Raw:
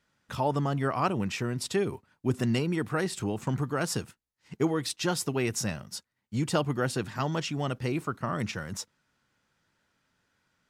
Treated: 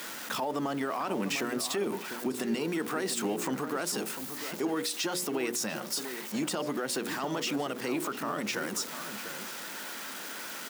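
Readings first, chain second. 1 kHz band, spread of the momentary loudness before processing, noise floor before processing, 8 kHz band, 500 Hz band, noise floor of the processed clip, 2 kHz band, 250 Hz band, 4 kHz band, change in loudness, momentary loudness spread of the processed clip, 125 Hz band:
-2.0 dB, 8 LU, -80 dBFS, +3.0 dB, -1.5 dB, -41 dBFS, +1.0 dB, -2.0 dB, +2.5 dB, -2.0 dB, 7 LU, -14.0 dB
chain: jump at every zero crossing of -40.5 dBFS; high-pass 230 Hz 24 dB/octave; de-esser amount 55%; treble shelf 12 kHz +9 dB; hum notches 60/120/180/240/300/360/420/480/540/600 Hz; compression 1.5:1, threshold -34 dBFS, peak gain reduction 5 dB; peak limiter -28 dBFS, peak gain reduction 11.5 dB; echo from a far wall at 120 m, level -9 dB; trim +5.5 dB

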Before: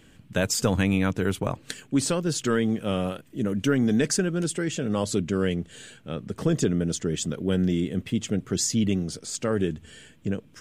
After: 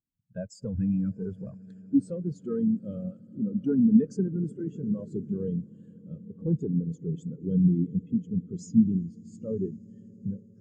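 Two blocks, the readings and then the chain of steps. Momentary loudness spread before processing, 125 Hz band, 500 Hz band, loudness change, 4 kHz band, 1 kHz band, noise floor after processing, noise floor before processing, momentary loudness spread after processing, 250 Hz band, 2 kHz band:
9 LU, -2.5 dB, -8.5 dB, -2.5 dB, under -25 dB, under -25 dB, -54 dBFS, -55 dBFS, 17 LU, -0.5 dB, under -25 dB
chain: in parallel at +2 dB: compression, threshold -40 dBFS, peak gain reduction 20.5 dB; on the sum: one-sided clip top -19.5 dBFS; echo with a slow build-up 80 ms, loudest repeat 8, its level -16.5 dB; spectral contrast expander 2.5:1

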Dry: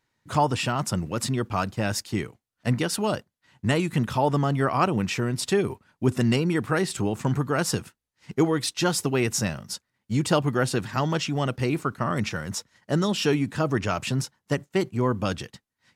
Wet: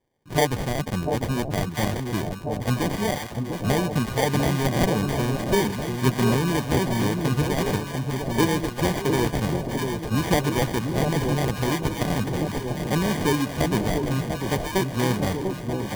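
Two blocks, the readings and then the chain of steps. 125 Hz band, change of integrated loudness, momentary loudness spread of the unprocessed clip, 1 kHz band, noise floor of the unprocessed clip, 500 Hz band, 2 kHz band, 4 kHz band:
+2.5 dB, +1.5 dB, 8 LU, +0.5 dB, -80 dBFS, +1.5 dB, +1.5 dB, +0.5 dB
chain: low-pass 11 kHz 24 dB/octave; sample-and-hold 33×; echo whose repeats swap between lows and highs 695 ms, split 820 Hz, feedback 79%, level -4.5 dB

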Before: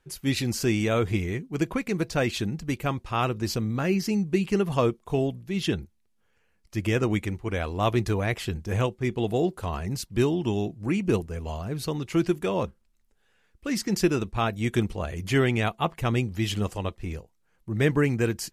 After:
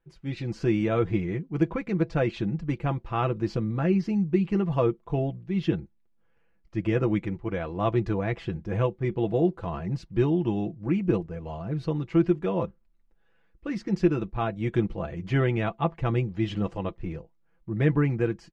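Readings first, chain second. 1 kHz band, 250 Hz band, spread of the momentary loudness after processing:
-2.0 dB, +0.5 dB, 9 LU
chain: comb 6 ms, depth 56%; level rider gain up to 7.5 dB; tape spacing loss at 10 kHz 32 dB; trim -6.5 dB

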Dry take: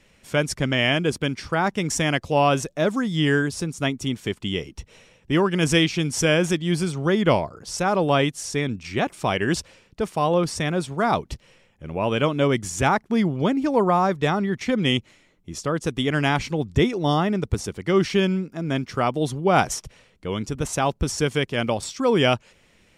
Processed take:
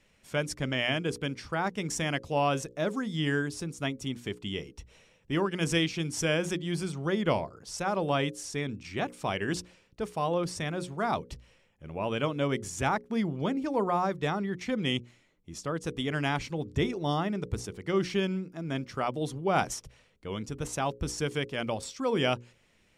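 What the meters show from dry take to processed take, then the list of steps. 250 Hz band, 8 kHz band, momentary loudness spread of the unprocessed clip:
-8.5 dB, -8.0 dB, 8 LU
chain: hum notches 60/120/180/240/300/360/420/480/540 Hz; trim -8 dB

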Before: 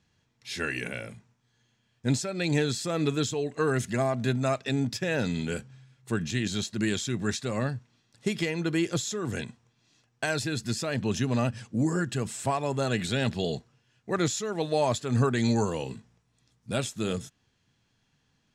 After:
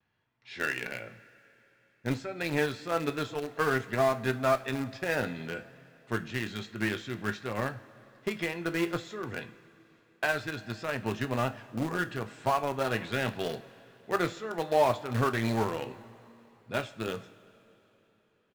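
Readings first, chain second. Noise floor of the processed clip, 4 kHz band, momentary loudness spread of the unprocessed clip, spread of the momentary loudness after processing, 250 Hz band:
-68 dBFS, -5.5 dB, 9 LU, 11 LU, -5.5 dB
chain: low-pass 2.1 kHz 12 dB/octave; bass shelf 390 Hz -12 dB; doubling 18 ms -11 dB; in parallel at -4 dB: small samples zeroed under -28 dBFS; on the sum: two-slope reverb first 0.29 s, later 3.4 s, from -18 dB, DRR 9 dB; vibrato 0.37 Hz 19 cents

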